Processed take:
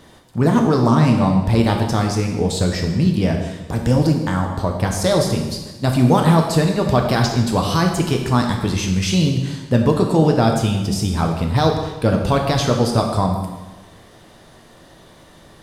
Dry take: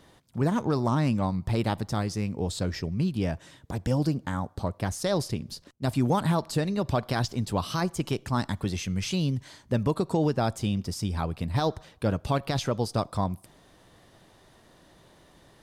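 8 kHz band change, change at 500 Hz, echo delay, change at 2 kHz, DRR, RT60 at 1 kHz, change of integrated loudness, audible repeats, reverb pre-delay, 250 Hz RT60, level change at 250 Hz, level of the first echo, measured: +10.5 dB, +11.0 dB, none, +10.5 dB, 2.0 dB, 1.2 s, +10.5 dB, none, 4 ms, 1.2 s, +11.0 dB, none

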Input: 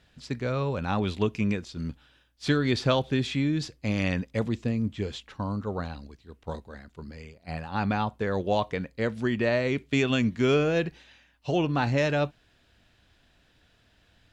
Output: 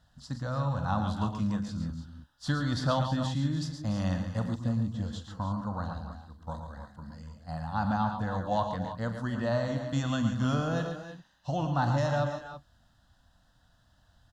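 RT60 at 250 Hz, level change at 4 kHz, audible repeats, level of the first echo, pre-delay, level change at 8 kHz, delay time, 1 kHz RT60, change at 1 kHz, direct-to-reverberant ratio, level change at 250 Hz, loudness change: none, -6.0 dB, 4, -13.0 dB, none, -2.0 dB, 43 ms, none, 0.0 dB, none, -3.5 dB, -3.5 dB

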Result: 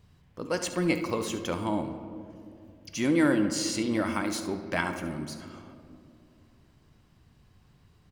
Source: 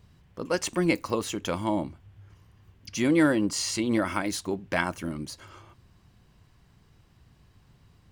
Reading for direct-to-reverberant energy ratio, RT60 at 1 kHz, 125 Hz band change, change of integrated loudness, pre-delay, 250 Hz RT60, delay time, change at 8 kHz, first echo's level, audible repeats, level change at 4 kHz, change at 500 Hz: 7.0 dB, 2.1 s, -1.5 dB, -1.5 dB, 4 ms, 3.3 s, 71 ms, -2.0 dB, -13.5 dB, 1, -2.0 dB, -1.5 dB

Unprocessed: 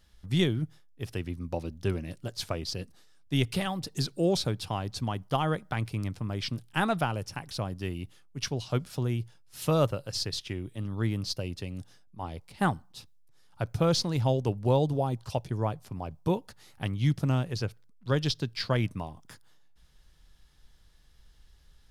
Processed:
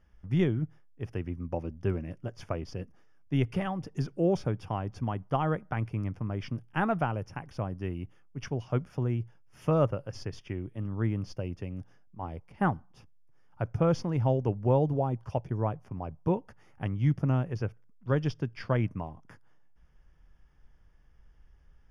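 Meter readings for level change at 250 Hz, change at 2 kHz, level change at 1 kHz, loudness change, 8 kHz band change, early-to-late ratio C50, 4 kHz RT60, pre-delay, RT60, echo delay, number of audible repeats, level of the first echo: 0.0 dB, -3.5 dB, -1.0 dB, -1.0 dB, under -10 dB, none, none, none, none, none, none, none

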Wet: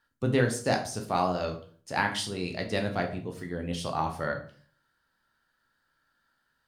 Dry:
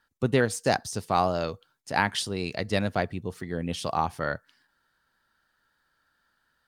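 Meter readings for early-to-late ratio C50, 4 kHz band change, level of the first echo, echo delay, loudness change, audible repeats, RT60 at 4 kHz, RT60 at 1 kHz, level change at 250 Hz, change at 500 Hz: 10.0 dB, -2.5 dB, none, none, -2.0 dB, none, 0.35 s, 0.45 s, -1.0 dB, -2.0 dB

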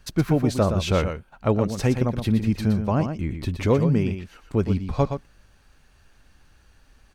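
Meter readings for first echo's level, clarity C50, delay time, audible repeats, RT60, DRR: -8.0 dB, none, 0.119 s, 1, none, none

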